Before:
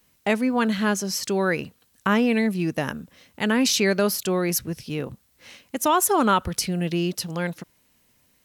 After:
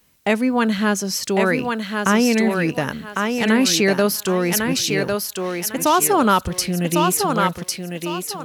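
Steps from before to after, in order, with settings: thinning echo 1.102 s, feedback 30%, high-pass 290 Hz, level -3 dB; gain +3.5 dB

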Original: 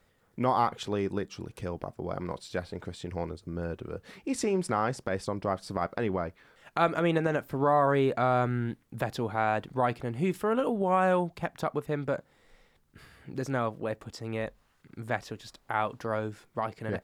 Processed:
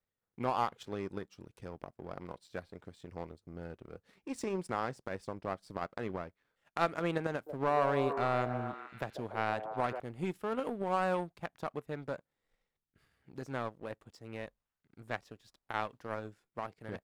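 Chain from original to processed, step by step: power-law curve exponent 1.4; 7.32–10 delay with a stepping band-pass 0.144 s, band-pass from 500 Hz, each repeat 0.7 oct, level -4.5 dB; gain -3 dB

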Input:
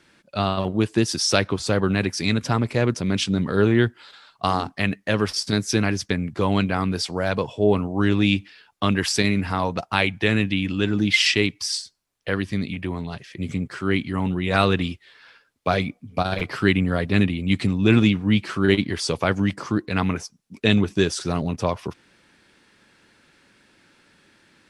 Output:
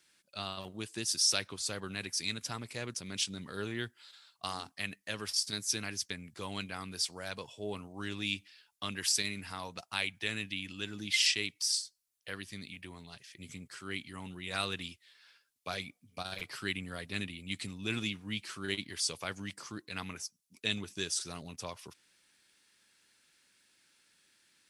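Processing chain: pre-emphasis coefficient 0.9; gain -2 dB

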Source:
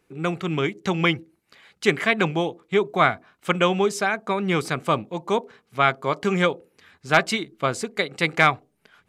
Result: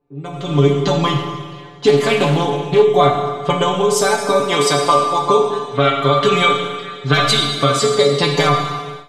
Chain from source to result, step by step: low-pass opened by the level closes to 1500 Hz, open at -20 dBFS; 4.4–5.22 weighting filter A; 5.52–7.89 spectral gain 1100–4100 Hz +10 dB; band shelf 1900 Hz -11.5 dB 1.3 oct; compressor 6:1, threshold -27 dBFS, peak gain reduction 14.5 dB; metallic resonator 140 Hz, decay 0.28 s, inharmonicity 0.002; Schroeder reverb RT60 1.7 s, combs from 27 ms, DRR 2.5 dB; AGC gain up to 16 dB; maximiser +12.5 dB; 1.88–2.85 Doppler distortion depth 0.24 ms; gain -1 dB

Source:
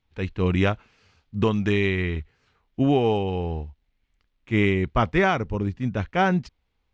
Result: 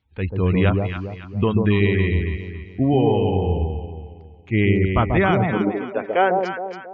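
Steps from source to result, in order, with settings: in parallel at -11 dB: soft clip -25 dBFS, distortion -7 dB; on the sum: spectral gate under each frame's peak -30 dB strong; echo with dull and thin repeats by turns 0.138 s, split 890 Hz, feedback 61%, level -2.5 dB; high-pass sweep 61 Hz -> 450 Hz, 5.19–5.84

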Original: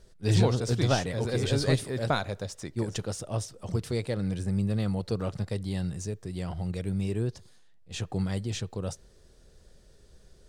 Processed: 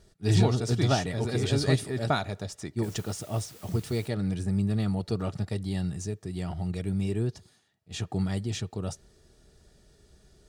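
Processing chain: notch comb 520 Hz; 2.82–4.07 added noise white -54 dBFS; gain +1.5 dB

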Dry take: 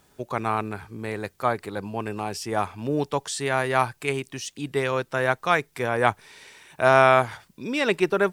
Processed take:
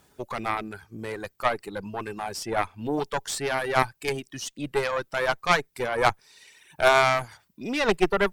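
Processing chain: reverb removal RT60 1.1 s; added harmonics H 4 -17 dB, 8 -20 dB, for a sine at -2.5 dBFS

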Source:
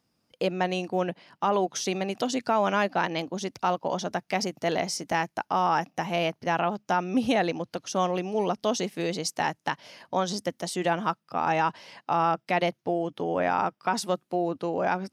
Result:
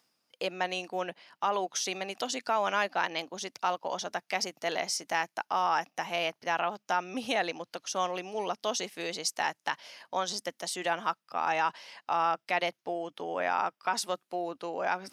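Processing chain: HPF 990 Hz 6 dB/oct; reverse; upward compressor, threshold -42 dBFS; reverse

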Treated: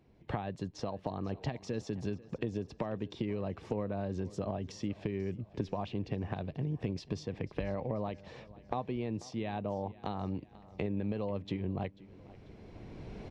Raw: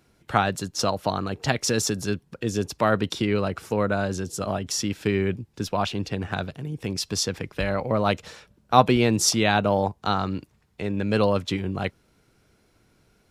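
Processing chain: recorder AGC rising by 13 dB/s; bell 1400 Hz -14 dB 0.31 oct; compressor 6:1, threshold -30 dBFS, peak gain reduction 18.5 dB; tape spacing loss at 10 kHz 31 dB; feedback echo 0.49 s, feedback 48%, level -20 dB; gain -1.5 dB

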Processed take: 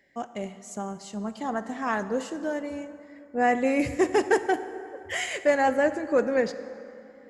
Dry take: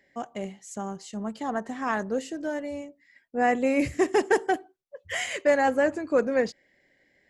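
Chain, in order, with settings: plate-style reverb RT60 2.8 s, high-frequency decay 0.55×, DRR 11 dB

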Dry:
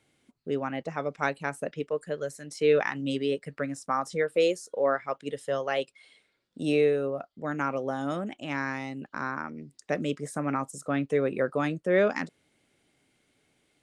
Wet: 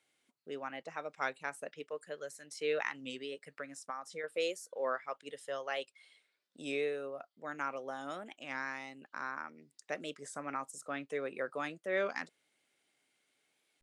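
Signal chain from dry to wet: HPF 900 Hz 6 dB/oct; 3.09–4.24 compressor 6:1, threshold -33 dBFS, peak gain reduction 8 dB; record warp 33 1/3 rpm, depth 100 cents; gain -5 dB

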